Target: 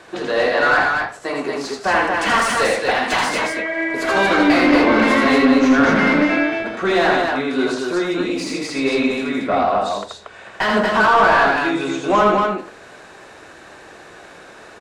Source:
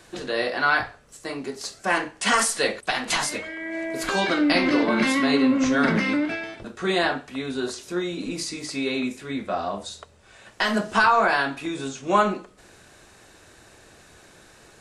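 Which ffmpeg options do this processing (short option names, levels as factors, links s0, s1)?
-filter_complex "[0:a]asplit=2[s0][s1];[s1]highpass=f=720:p=1,volume=10,asoftclip=type=tanh:threshold=0.531[s2];[s0][s2]amix=inputs=2:normalize=0,lowpass=f=1100:p=1,volume=0.501,aecho=1:1:81.63|233.2:0.708|0.708"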